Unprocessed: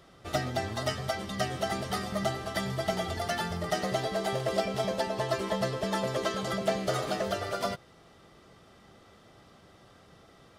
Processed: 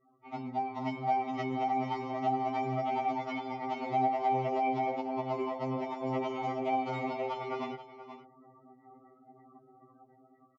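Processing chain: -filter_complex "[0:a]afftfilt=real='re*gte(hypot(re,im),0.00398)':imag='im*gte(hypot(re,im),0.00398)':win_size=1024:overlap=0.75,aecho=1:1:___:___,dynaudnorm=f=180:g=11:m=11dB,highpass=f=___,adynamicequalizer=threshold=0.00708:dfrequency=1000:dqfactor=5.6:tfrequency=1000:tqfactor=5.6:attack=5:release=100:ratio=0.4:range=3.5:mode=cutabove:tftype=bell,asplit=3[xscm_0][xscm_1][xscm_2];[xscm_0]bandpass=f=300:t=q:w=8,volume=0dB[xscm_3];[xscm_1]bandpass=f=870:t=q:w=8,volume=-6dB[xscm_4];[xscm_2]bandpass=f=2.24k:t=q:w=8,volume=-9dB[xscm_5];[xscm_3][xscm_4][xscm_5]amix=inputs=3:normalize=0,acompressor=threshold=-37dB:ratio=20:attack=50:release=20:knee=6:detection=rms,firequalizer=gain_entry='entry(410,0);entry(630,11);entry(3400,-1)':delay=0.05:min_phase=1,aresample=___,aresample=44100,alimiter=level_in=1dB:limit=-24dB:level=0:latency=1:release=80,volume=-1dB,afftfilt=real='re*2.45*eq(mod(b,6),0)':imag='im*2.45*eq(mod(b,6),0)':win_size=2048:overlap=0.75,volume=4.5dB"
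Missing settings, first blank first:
479, 0.168, 50, 16000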